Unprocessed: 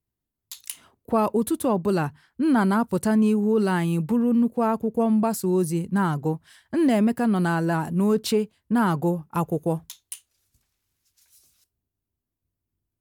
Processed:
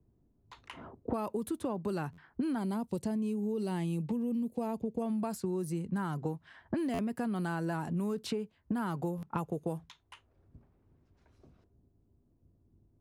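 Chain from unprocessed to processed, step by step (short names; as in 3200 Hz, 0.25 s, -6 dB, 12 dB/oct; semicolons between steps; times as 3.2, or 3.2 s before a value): 2.58–5.02 bell 1400 Hz -12.5 dB 0.85 oct; low-pass opened by the level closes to 530 Hz, open at -19.5 dBFS; compressor 12:1, threshold -38 dBFS, peak gain reduction 21.5 dB; stuck buffer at 2.12/6.93/9.17, samples 512, times 4; three-band squash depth 40%; gain +6.5 dB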